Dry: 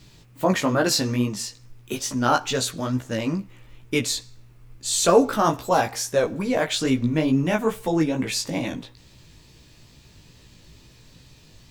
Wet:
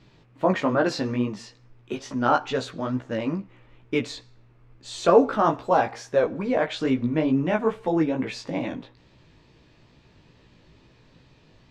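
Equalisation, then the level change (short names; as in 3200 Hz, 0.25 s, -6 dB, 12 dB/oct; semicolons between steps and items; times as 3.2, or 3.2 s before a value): tape spacing loss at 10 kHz 22 dB; low shelf 170 Hz -11 dB; high shelf 4500 Hz -6.5 dB; +2.5 dB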